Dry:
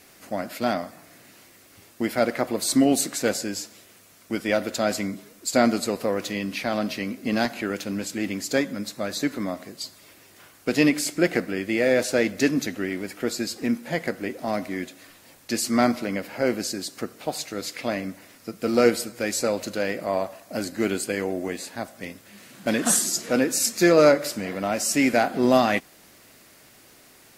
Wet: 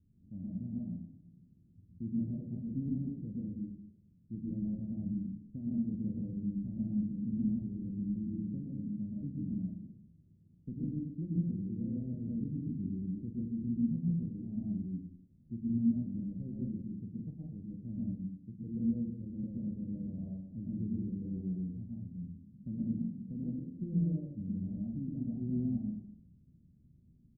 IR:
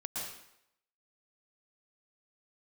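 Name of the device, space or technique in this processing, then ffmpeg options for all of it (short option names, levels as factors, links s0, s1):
club heard from the street: -filter_complex "[0:a]alimiter=limit=0.237:level=0:latency=1:release=306,lowpass=f=170:w=0.5412,lowpass=f=170:w=1.3066[s0];[1:a]atrim=start_sample=2205[s1];[s0][s1]afir=irnorm=-1:irlink=0,asplit=2[s2][s3];[s3]adelay=43,volume=0.355[s4];[s2][s4]amix=inputs=2:normalize=0,volume=1.33"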